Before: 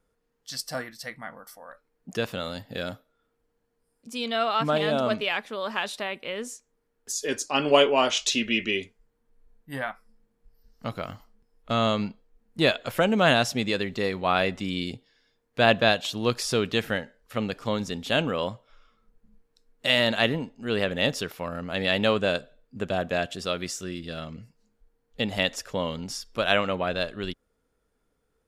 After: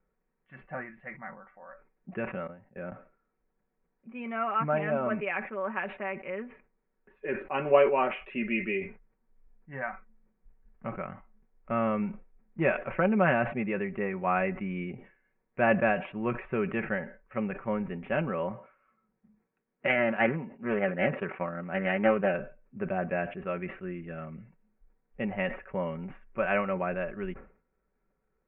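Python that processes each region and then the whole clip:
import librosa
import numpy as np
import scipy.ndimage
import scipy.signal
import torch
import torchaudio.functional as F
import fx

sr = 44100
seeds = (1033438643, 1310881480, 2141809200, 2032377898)

y = fx.chain(x, sr, fx.high_shelf(hz=2600.0, db=-10.5),
    fx.level_steps(step_db=17),
    fx.band_widen(depth_pct=40), at=(2.47, 2.92))
y = fx.chain(y, sr, fx.highpass(hz=110.0, slope=12),
    fx.transient(attack_db=6, sustain_db=-2),
    fx.doppler_dist(depth_ms=0.29), at=(18.5, 22.34))
y = scipy.signal.sosfilt(scipy.signal.butter(12, 2500.0, 'lowpass', fs=sr, output='sos'), y)
y = y + 0.6 * np.pad(y, (int(5.3 * sr / 1000.0), 0))[:len(y)]
y = fx.sustainer(y, sr, db_per_s=130.0)
y = F.gain(torch.from_numpy(y), -5.0).numpy()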